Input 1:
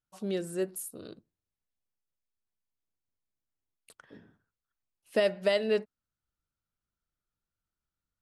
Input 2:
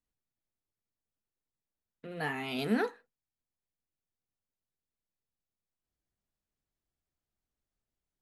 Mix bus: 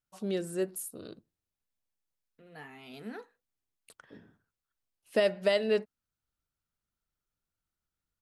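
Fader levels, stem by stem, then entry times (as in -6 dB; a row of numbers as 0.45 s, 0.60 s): 0.0 dB, -13.0 dB; 0.00 s, 0.35 s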